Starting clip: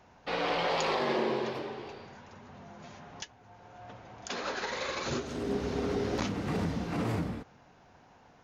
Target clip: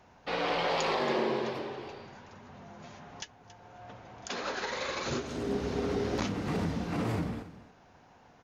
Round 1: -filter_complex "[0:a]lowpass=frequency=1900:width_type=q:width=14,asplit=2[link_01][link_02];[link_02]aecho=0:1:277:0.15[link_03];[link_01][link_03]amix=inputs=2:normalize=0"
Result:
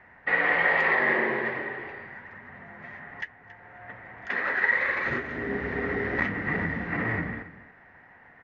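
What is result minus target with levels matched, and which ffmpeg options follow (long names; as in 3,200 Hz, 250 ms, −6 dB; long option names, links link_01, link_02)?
2,000 Hz band +8.5 dB
-filter_complex "[0:a]asplit=2[link_01][link_02];[link_02]aecho=0:1:277:0.15[link_03];[link_01][link_03]amix=inputs=2:normalize=0"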